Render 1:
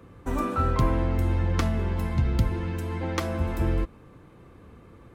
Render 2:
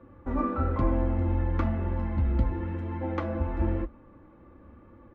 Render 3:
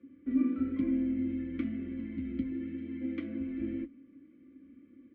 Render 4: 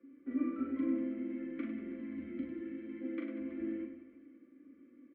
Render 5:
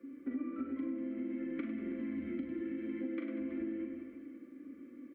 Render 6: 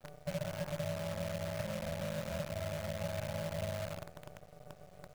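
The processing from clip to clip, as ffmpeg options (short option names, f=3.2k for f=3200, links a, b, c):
-af "lowpass=1.6k,aecho=1:1:3.5:0.62,flanger=delay=7.8:depth=8.4:regen=-52:speed=1:shape=sinusoidal,volume=1dB"
-filter_complex "[0:a]asplit=3[a][b][c];[a]bandpass=f=270:t=q:w=8,volume=0dB[d];[b]bandpass=f=2.29k:t=q:w=8,volume=-6dB[e];[c]bandpass=f=3.01k:t=q:w=8,volume=-9dB[f];[d][e][f]amix=inputs=3:normalize=0,volume=6dB"
-filter_complex "[0:a]acrossover=split=280 2300:gain=0.126 1 0.2[a][b][c];[a][b][c]amix=inputs=3:normalize=0,aecho=1:1:40|100|190|325|527.5:0.631|0.398|0.251|0.158|0.1"
-af "acompressor=threshold=-43dB:ratio=10,volume=8dB"
-af "highpass=f=150:t=q:w=0.5412,highpass=f=150:t=q:w=1.307,lowpass=f=2.7k:t=q:w=0.5176,lowpass=f=2.7k:t=q:w=0.7071,lowpass=f=2.7k:t=q:w=1.932,afreqshift=-57,aeval=exprs='val(0)*sin(2*PI*370*n/s)':c=same,acrusher=bits=8:dc=4:mix=0:aa=0.000001,volume=2.5dB"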